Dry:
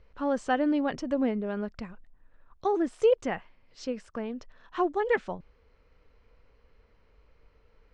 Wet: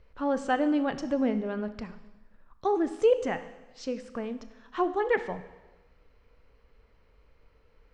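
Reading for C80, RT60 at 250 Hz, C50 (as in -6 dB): 15.0 dB, 1.1 s, 13.0 dB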